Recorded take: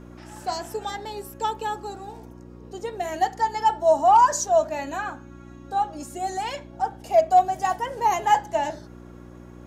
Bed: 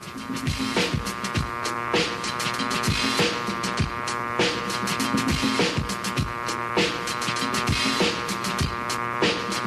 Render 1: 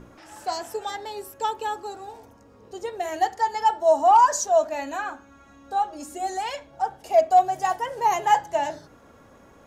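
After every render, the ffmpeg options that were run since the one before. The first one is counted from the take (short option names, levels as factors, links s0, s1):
-af "bandreject=f=60:t=h:w=4,bandreject=f=120:t=h:w=4,bandreject=f=180:t=h:w=4,bandreject=f=240:t=h:w=4,bandreject=f=300:t=h:w=4,bandreject=f=360:t=h:w=4"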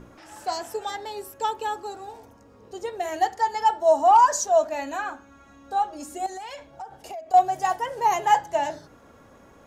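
-filter_complex "[0:a]asettb=1/sr,asplit=3[s0][s1][s2];[s0]atrim=end=6.264[s3];[s1]atrim=start=6.26:end=7.34,asetpts=PTS-STARTPTS,afade=t=in:d=0.004:c=qsin,afade=t=out:st=1.076:d=0.004:c=qsin,acompressor=threshold=0.0224:ratio=12:attack=3.2:release=140:knee=1:detection=peak[s4];[s2]atrim=start=7.336[s5];[s3][s4]acrossfade=d=0.004:c1=hsin:c2=qsin[s6];[s6][s5]acrossfade=d=0.004:c1=qsin:c2=hsin"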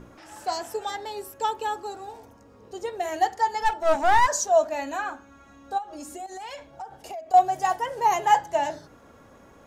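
-filter_complex "[0:a]asplit=3[s0][s1][s2];[s0]afade=t=out:st=3.61:d=0.02[s3];[s1]aeval=exprs='clip(val(0),-1,0.0422)':c=same,afade=t=in:st=3.61:d=0.02,afade=t=out:st=4.27:d=0.02[s4];[s2]afade=t=in:st=4.27:d=0.02[s5];[s3][s4][s5]amix=inputs=3:normalize=0,asplit=3[s6][s7][s8];[s6]afade=t=out:st=5.77:d=0.02[s9];[s7]acompressor=threshold=0.02:ratio=5:attack=3.2:release=140:knee=1:detection=peak,afade=t=in:st=5.77:d=0.02,afade=t=out:st=6.42:d=0.02[s10];[s8]afade=t=in:st=6.42:d=0.02[s11];[s9][s10][s11]amix=inputs=3:normalize=0"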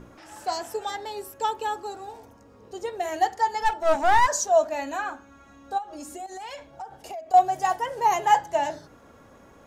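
-af anull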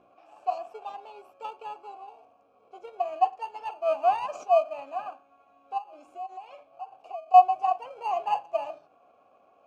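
-filter_complex "[0:a]asplit=2[s0][s1];[s1]acrusher=samples=24:mix=1:aa=0.000001,volume=0.562[s2];[s0][s2]amix=inputs=2:normalize=0,asplit=3[s3][s4][s5];[s3]bandpass=f=730:t=q:w=8,volume=1[s6];[s4]bandpass=f=1090:t=q:w=8,volume=0.501[s7];[s5]bandpass=f=2440:t=q:w=8,volume=0.355[s8];[s6][s7][s8]amix=inputs=3:normalize=0"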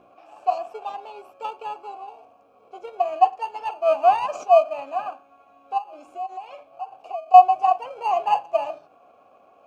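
-af "volume=2.11,alimiter=limit=0.891:level=0:latency=1"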